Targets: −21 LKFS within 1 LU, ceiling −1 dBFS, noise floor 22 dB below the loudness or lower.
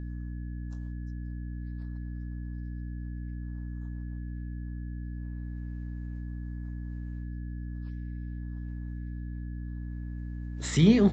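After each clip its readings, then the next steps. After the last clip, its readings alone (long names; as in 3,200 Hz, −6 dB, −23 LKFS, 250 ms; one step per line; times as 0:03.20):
mains hum 60 Hz; hum harmonics up to 300 Hz; level of the hum −34 dBFS; interfering tone 1,700 Hz; level of the tone −60 dBFS; integrated loudness −35.0 LKFS; sample peak −9.5 dBFS; target loudness −21.0 LKFS
→ mains-hum notches 60/120/180/240/300 Hz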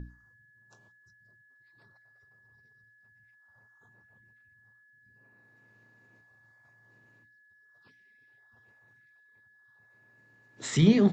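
mains hum none found; interfering tone 1,700 Hz; level of the tone −60 dBFS
→ notch filter 1,700 Hz, Q 30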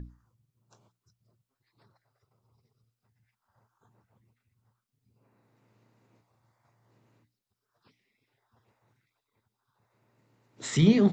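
interfering tone none found; integrated loudness −24.5 LKFS; sample peak −9.0 dBFS; target loudness −21.0 LKFS
→ level +3.5 dB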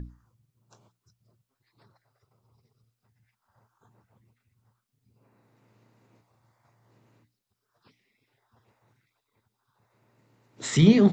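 integrated loudness −21.0 LKFS; sample peak −5.5 dBFS; background noise floor −82 dBFS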